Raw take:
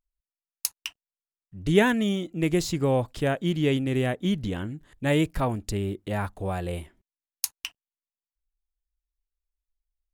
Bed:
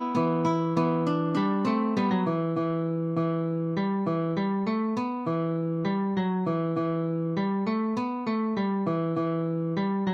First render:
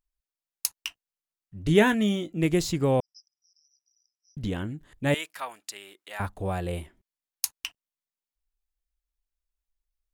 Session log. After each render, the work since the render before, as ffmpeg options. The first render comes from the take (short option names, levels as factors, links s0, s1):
-filter_complex "[0:a]asettb=1/sr,asplit=3[s0][s1][s2];[s0]atrim=end=0.754[s3];[s1]atrim=start=0.75:end=2.46,asetpts=PTS-STARTPTS,afade=t=in:d=0.004:c=qsin,afade=t=out:st=1.706:d=0.004:c=qsin,asplit=2[s4][s5];[s5]adelay=19,volume=0.266[s6];[s4][s6]amix=inputs=2:normalize=0,atrim=end_sample=75411[s7];[s2]atrim=start=2.456[s8];[s3][s7]acrossfade=d=0.004:c1=hsin:c2=qsin[s9];[s9][s8]acrossfade=d=0.004:c1=qsin:c2=hsin,asettb=1/sr,asplit=3[s10][s11][s12];[s10]atrim=end=3.004[s13];[s11]atrim=start=3:end=4.37,asetpts=PTS-STARTPTS,afade=t=in:d=0.004:c=qsin,afade=t=out:st=1.366:d=0.004:c=qsin,asuperpass=centerf=5400:order=20:qfactor=5.3[s14];[s12]atrim=start=4.366[s15];[s13][s14]acrossfade=d=0.004:c1=hsin:c2=qsin[s16];[s16][s15]acrossfade=d=0.004:c1=qsin:c2=hsin,asettb=1/sr,asplit=3[s17][s18][s19];[s17]atrim=end=5.144[s20];[s18]atrim=start=5.14:end=6.2,asetpts=PTS-STARTPTS,afade=t=in:d=0.004:c=qsin,afade=t=out:st=1.056:d=0.004:c=qsin,highpass=1200[s21];[s19]atrim=start=6.196[s22];[s20][s21]acrossfade=d=0.004:c1=hsin:c2=qsin[s23];[s23][s22]acrossfade=d=0.004:c1=qsin:c2=hsin"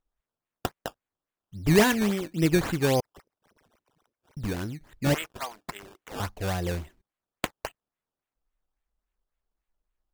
-af "aphaser=in_gain=1:out_gain=1:delay=3:decay=0.21:speed=1.2:type=triangular,acrusher=samples=15:mix=1:aa=0.000001:lfo=1:lforange=15:lforate=3.6"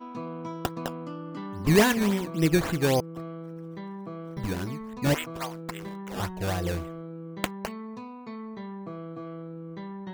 -filter_complex "[1:a]volume=0.266[s0];[0:a][s0]amix=inputs=2:normalize=0"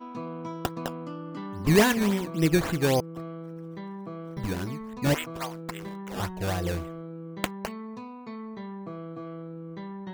-af anull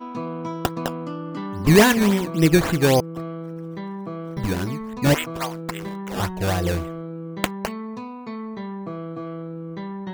-af "volume=2.11,alimiter=limit=0.708:level=0:latency=1"